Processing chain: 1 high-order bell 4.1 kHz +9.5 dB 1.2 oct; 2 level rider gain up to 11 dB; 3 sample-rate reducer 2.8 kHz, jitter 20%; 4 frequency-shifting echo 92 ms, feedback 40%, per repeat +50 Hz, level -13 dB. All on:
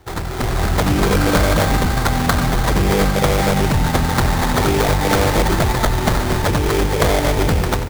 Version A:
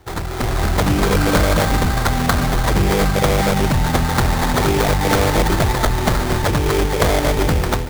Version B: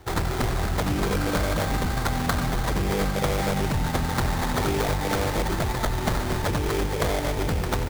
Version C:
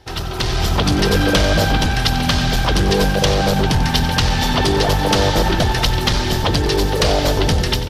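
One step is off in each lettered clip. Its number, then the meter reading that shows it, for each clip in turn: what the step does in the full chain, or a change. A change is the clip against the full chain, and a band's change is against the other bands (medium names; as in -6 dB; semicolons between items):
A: 4, echo-to-direct -12.0 dB to none; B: 2, momentary loudness spread change -1 LU; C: 3, distortion -1 dB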